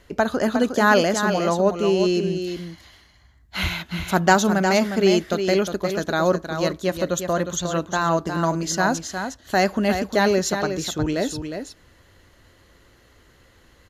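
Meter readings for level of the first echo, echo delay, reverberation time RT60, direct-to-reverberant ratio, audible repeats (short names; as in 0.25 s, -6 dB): -7.5 dB, 0.359 s, none, none, 1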